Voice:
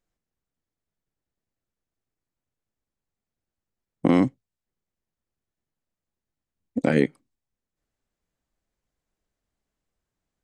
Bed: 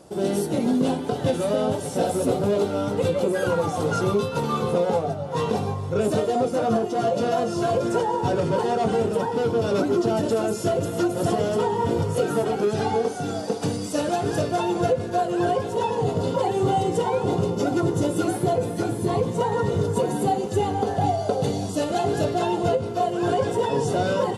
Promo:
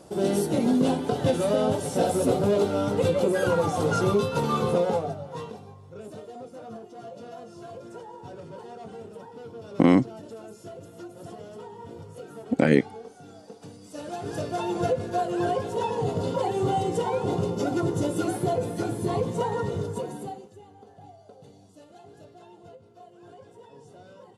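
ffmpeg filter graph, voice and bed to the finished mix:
ffmpeg -i stem1.wav -i stem2.wav -filter_complex "[0:a]adelay=5750,volume=1dB[link_01];[1:a]volume=15dB,afade=type=out:start_time=4.69:duration=0.88:silence=0.11885,afade=type=in:start_time=13.81:duration=1.04:silence=0.16788,afade=type=out:start_time=19.4:duration=1.15:silence=0.0707946[link_02];[link_01][link_02]amix=inputs=2:normalize=0" out.wav

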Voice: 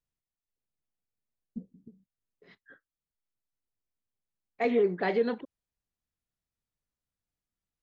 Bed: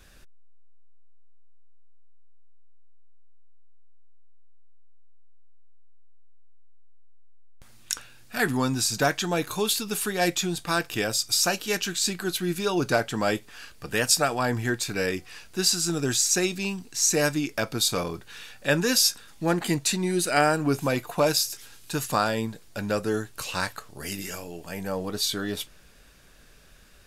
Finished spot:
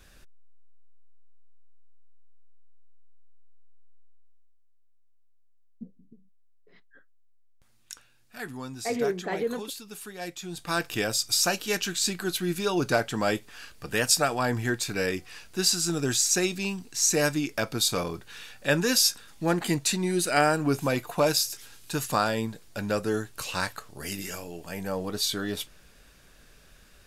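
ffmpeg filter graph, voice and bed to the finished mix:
ffmpeg -i stem1.wav -i stem2.wav -filter_complex "[0:a]adelay=4250,volume=-2.5dB[link_01];[1:a]volume=10.5dB,afade=type=out:start_time=3.98:duration=0.61:silence=0.266073,afade=type=in:start_time=10.41:duration=0.43:silence=0.251189[link_02];[link_01][link_02]amix=inputs=2:normalize=0" out.wav

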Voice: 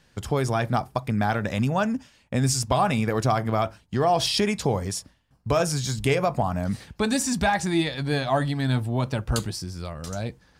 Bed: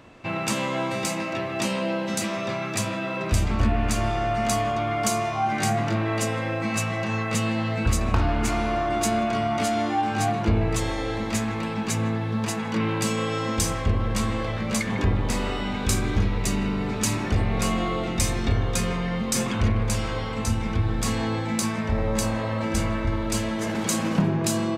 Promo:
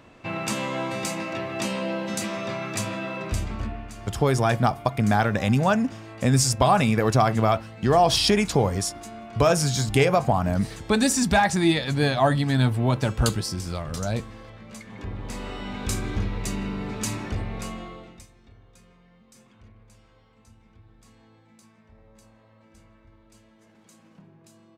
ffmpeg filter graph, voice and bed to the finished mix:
ffmpeg -i stem1.wav -i stem2.wav -filter_complex "[0:a]adelay=3900,volume=3dB[link_01];[1:a]volume=10dB,afade=type=out:start_time=3.02:duration=0.88:silence=0.188365,afade=type=in:start_time=14.88:duration=0.97:silence=0.251189,afade=type=out:start_time=17.09:duration=1.18:silence=0.0530884[link_02];[link_01][link_02]amix=inputs=2:normalize=0" out.wav

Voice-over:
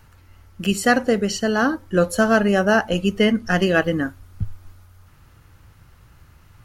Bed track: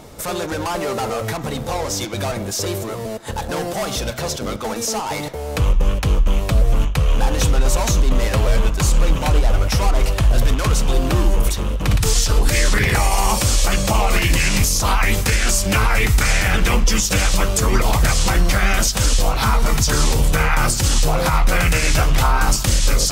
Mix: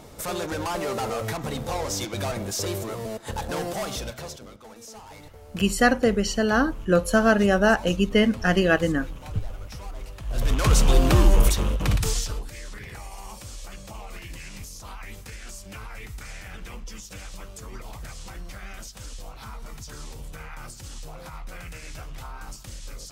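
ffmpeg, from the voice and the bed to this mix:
ffmpeg -i stem1.wav -i stem2.wav -filter_complex "[0:a]adelay=4950,volume=-2dB[link_01];[1:a]volume=15dB,afade=type=out:start_time=3.69:duration=0.81:silence=0.16788,afade=type=in:start_time=10.25:duration=0.52:silence=0.0944061,afade=type=out:start_time=11.43:duration=1.04:silence=0.0749894[link_02];[link_01][link_02]amix=inputs=2:normalize=0" out.wav

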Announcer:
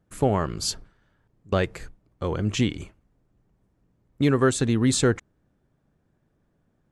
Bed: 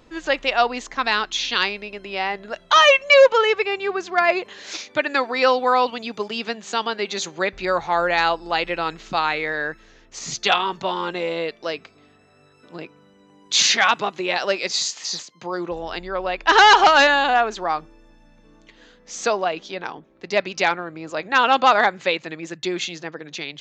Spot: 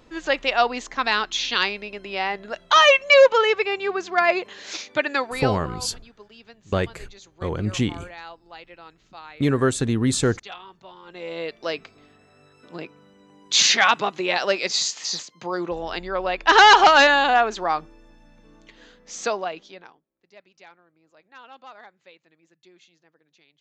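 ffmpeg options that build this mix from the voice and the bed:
ffmpeg -i stem1.wav -i stem2.wav -filter_complex "[0:a]adelay=5200,volume=0dB[link_01];[1:a]volume=19.5dB,afade=type=out:start_time=5.04:duration=0.64:silence=0.105925,afade=type=in:start_time=11.05:duration=0.68:silence=0.0944061,afade=type=out:start_time=18.87:duration=1.13:silence=0.0354813[link_02];[link_01][link_02]amix=inputs=2:normalize=0" out.wav

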